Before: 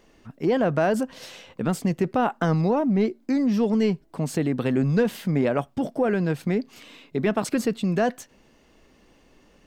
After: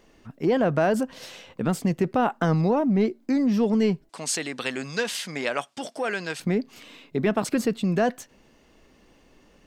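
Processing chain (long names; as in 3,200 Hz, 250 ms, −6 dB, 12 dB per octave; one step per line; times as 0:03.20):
0:04.09–0:06.40: meter weighting curve ITU-R 468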